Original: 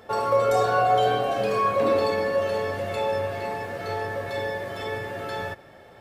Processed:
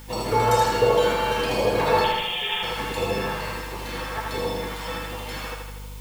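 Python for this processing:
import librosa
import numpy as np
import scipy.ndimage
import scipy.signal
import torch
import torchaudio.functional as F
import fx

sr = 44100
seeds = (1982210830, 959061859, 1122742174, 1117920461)

p1 = fx.spec_gate(x, sr, threshold_db=-15, keep='weak')
p2 = fx.add_hum(p1, sr, base_hz=50, snr_db=13)
p3 = fx.freq_invert(p2, sr, carrier_hz=3500, at=(2.04, 2.63))
p4 = fx.filter_lfo_notch(p3, sr, shape='sine', hz=1.4, low_hz=270.0, high_hz=1700.0, q=1.3)
p5 = fx.quant_dither(p4, sr, seeds[0], bits=8, dither='triangular')
p6 = p4 + (p5 * 10.0 ** (-6.0 / 20.0))
p7 = fx.small_body(p6, sr, hz=(490.0, 890.0), ring_ms=50, db=15)
p8 = p7 + fx.echo_feedback(p7, sr, ms=79, feedback_pct=56, wet_db=-4.0, dry=0)
y = p8 * 10.0 ** (3.0 / 20.0)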